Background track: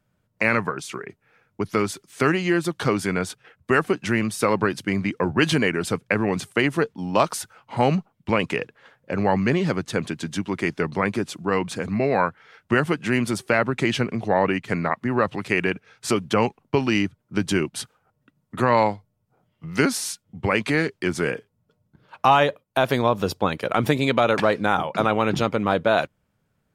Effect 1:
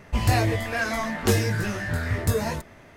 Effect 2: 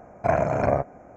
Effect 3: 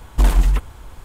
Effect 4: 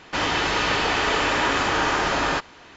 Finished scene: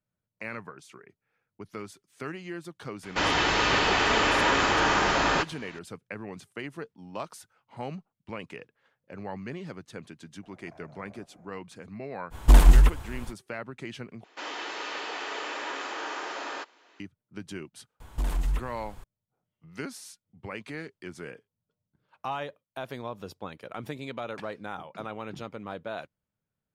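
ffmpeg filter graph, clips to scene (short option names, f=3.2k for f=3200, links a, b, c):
-filter_complex "[4:a]asplit=2[a][b];[3:a]asplit=2[c][d];[0:a]volume=-17dB[e];[2:a]acompressor=threshold=-38dB:ratio=6:attack=3.2:release=140:knee=1:detection=peak[f];[b]highpass=f=300:w=0.5412,highpass=f=300:w=1.3066[g];[d]alimiter=limit=-13dB:level=0:latency=1:release=86[h];[e]asplit=2[i][j];[i]atrim=end=14.244[k];[g]atrim=end=2.76,asetpts=PTS-STARTPTS,volume=-13dB[l];[j]atrim=start=16.996[m];[a]atrim=end=2.76,asetpts=PTS-STARTPTS,volume=-1.5dB,afade=t=in:d=0.004:c=hsin,afade=t=out:st=2.756:d=0.004:c=hsin,adelay=3030[n];[f]atrim=end=1.16,asetpts=PTS-STARTPTS,volume=-13.5dB,afade=t=in:d=0.004:c=hsin,afade=t=out:st=1.156:d=0.004:c=hsin,adelay=10430[o];[c]atrim=end=1.04,asetpts=PTS-STARTPTS,afade=t=in:d=0.05,afade=t=out:st=0.99:d=0.05,adelay=12300[p];[h]atrim=end=1.04,asetpts=PTS-STARTPTS,volume=-7.5dB,afade=t=in:d=0.004:c=hsin,afade=t=out:st=1.036:d=0.004:c=hsin,adelay=18000[q];[k][l]acrossfade=d=0.004:c1=hsin:c2=hsin[r];[r][m]acrossfade=d=0.004:c1=hsin:c2=hsin[s];[s][n][o][p][q]amix=inputs=5:normalize=0"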